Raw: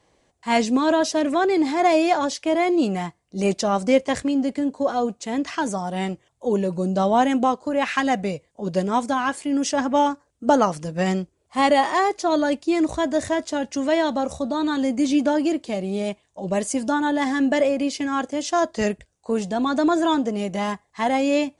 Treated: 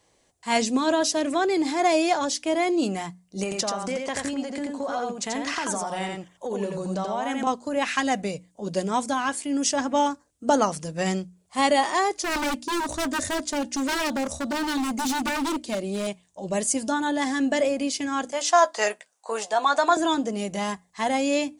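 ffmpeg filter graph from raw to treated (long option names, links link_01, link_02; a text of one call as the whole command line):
ffmpeg -i in.wav -filter_complex "[0:a]asettb=1/sr,asplit=3[link_01][link_02][link_03];[link_01]atrim=end=3.434[link_04];[link_02]atrim=start=3.43:end=7.47,asetpts=PTS-STARTPTS,afade=type=in:duration=0.004:curve=qsin,afade=type=out:start_time=4.036:duration=0.004:curve=qsin,equalizer=frequency=1300:width=0.47:gain=8,acompressor=threshold=-23dB:ratio=6:attack=3.2:release=140:knee=1:detection=peak,aecho=1:1:86:0.668,atrim=end_sample=178164[link_05];[link_03]atrim=start=7.466[link_06];[link_04][link_05]acrossfade=duration=0.004:curve1=hsin:curve2=qsin[link_07];[link_07][link_06]acrossfade=duration=0.004:curve1=qsin:curve2=hsin,asettb=1/sr,asplit=3[link_08][link_09][link_10];[link_08]atrim=end=12.214[link_11];[link_09]atrim=start=12.21:end=16.07,asetpts=PTS-STARTPTS,afade=type=in:duration=0.004:curve=qsin,afade=type=out:start_time=3.856:duration=0.004:curve=qsin,equalizer=frequency=140:width=0.4:gain=2,aecho=1:1:3.3:0.4,atrim=end_sample=170226,aeval=exprs='0.126*(abs(mod(val(0)/0.126+3,4)-2)-1)':channel_layout=same[link_12];[link_10]atrim=start=16.066[link_13];[link_11][link_12]acrossfade=duration=0.004:curve1=hsin:curve2=qsin[link_14];[link_14][link_13]acrossfade=duration=0.004:curve1=qsin:curve2=hsin,asettb=1/sr,asplit=3[link_15][link_16][link_17];[link_15]atrim=end=18.324[link_18];[link_16]atrim=start=18.32:end=19.97,asetpts=PTS-STARTPTS,afade=type=in:duration=0.004:curve=qsin,afade=type=out:start_time=1.646:duration=0.004:curve=qsin,highpass=670,equalizer=frequency=930:width=0.55:gain=10.5,asplit=2[link_19][link_20];[link_20]adelay=14,volume=-11dB[link_21];[link_19][link_21]amix=inputs=2:normalize=0,atrim=end_sample=72765[link_22];[link_17]atrim=start=19.966[link_23];[link_18][link_22]acrossfade=duration=0.004:curve1=hsin:curve2=qsin[link_24];[link_24][link_23]acrossfade=duration=0.004:curve1=qsin:curve2=hsin,highshelf=frequency=4900:gain=11.5,bandreject=frequency=60:width_type=h:width=6,bandreject=frequency=120:width_type=h:width=6,bandreject=frequency=180:width_type=h:width=6,bandreject=frequency=240:width_type=h:width=6,bandreject=frequency=300:width_type=h:width=6,volume=-3.5dB" out.wav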